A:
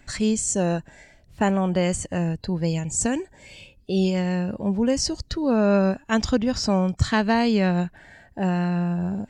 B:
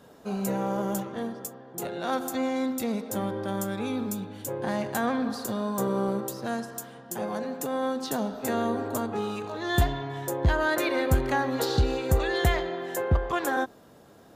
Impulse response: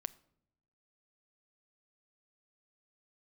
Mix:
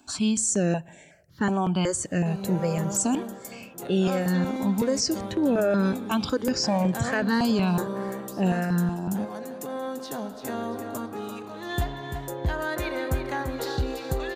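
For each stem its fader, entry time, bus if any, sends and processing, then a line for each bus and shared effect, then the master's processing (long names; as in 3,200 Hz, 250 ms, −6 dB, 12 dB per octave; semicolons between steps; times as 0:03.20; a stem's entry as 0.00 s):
−1.0 dB, 0.00 s, send −3 dB, no echo send, high-pass filter 150 Hz 12 dB per octave; notch filter 2,000 Hz, Q 15; step-sequenced phaser 5.4 Hz 520–4,800 Hz
−4.5 dB, 2.00 s, no send, echo send −8.5 dB, no processing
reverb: on, pre-delay 7 ms
echo: repeating echo 340 ms, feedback 35%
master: brickwall limiter −15.5 dBFS, peak gain reduction 5 dB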